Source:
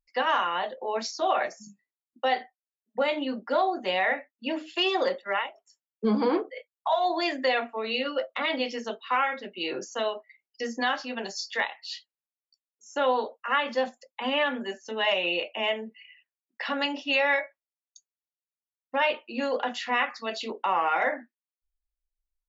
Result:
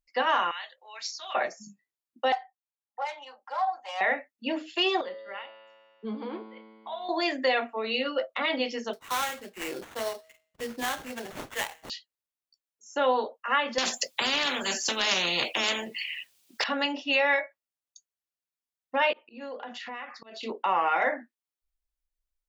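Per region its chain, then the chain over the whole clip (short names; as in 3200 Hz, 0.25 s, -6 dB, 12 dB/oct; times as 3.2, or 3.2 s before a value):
0.51–1.35 Chebyshev high-pass 2200 Hz + notch 3000 Hz, Q 30
2.32–4.01 self-modulated delay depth 0.093 ms + ladder high-pass 790 Hz, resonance 70% + comb 3.8 ms, depth 62%
5.01–7.09 resonant high shelf 4400 Hz -7.5 dB, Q 3 + resonator 110 Hz, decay 2 s, mix 80%
8.93–11.9 resonator 160 Hz, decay 0.58 s, mix 40% + sample-rate reducer 4900 Hz, jitter 20%
13.78–16.64 resonant high shelf 2300 Hz +7 dB, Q 1.5 + spectral compressor 4:1
19.13–20.43 high shelf 5500 Hz -12 dB + compressor 5:1, threshold -36 dBFS + auto swell 0.149 s
whole clip: dry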